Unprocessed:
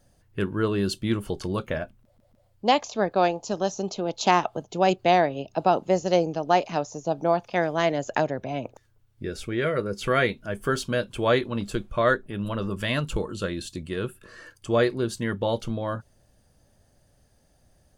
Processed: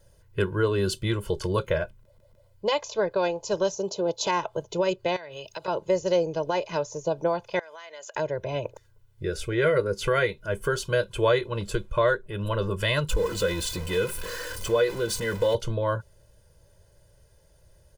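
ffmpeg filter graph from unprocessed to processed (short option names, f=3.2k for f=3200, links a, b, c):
-filter_complex "[0:a]asettb=1/sr,asplit=3[a][b][c];[a]atrim=end=3.754[d];[b]atrim=start=3.75:end=4.24,asetpts=PTS-STARTPTS,afade=t=in:d=0.004:c=qsin,afade=t=out:st=0.486:d=0.004:c=qsin,highpass=f=130:p=1,equalizer=f=2.2k:w=1.1:g=-9[e];[c]atrim=start=4.236[f];[d][e]acrossfade=d=0.004:c1=hsin:c2=qsin[g];[g][f]acrossfade=d=0.004:c1=qsin:c2=hsin,asettb=1/sr,asplit=3[h][i][j];[h]atrim=end=5.164[k];[i]atrim=start=5.16:end=5.68,asetpts=PTS-STARTPTS,afade=t=in:d=0.004:c=qsin,afade=t=out:st=0.516:d=0.004:c=qsin,acompressor=threshold=-29dB:ratio=16:attack=3.2:release=140:knee=1:detection=peak,tiltshelf=f=1.2k:g=-7.5[l];[j]atrim=start=5.676[m];[k][l]acrossfade=d=0.004:c1=hsin:c2=qsin[n];[n][m]acrossfade=d=0.004:c1=qsin:c2=hsin,asettb=1/sr,asplit=3[o][p][q];[o]atrim=end=7.594[r];[p]atrim=start=7.59:end=8.16,asetpts=PTS-STARTPTS,afade=t=in:d=0.004:c=qsin,afade=t=out:st=0.566:d=0.004:c=qsin,highpass=960,acompressor=threshold=-40dB:ratio=8:attack=3.2:release=140:knee=1:detection=peak[s];[q]atrim=start=8.156[t];[r][s]acrossfade=d=0.004:c1=hsin:c2=qsin[u];[u][t]acrossfade=d=0.004:c1=qsin:c2=hsin,asettb=1/sr,asplit=3[v][w][x];[v]atrim=end=13.094[y];[w]atrim=start=13.09:end=15.55,asetpts=PTS-STARTPTS,afade=t=in:d=0.004:c=qsin,afade=t=out:st=2.456:d=0.004:c=qsin,aeval=exprs='val(0)+0.5*0.02*sgn(val(0))':c=same,aecho=1:1:4:0.57,atrim=end_sample=108486,acompressor=threshold=-24dB:ratio=3:attack=3.2:release=140:knee=1:detection=peak[z];[x]atrim=start=15.546[aa];[y][z]acrossfade=d=0.004:c1=hsin:c2=qsin[ab];[ab][aa]acrossfade=d=0.004:c1=qsin:c2=hsin,alimiter=limit=-15.5dB:level=0:latency=1:release=320,aecho=1:1:2:0.96"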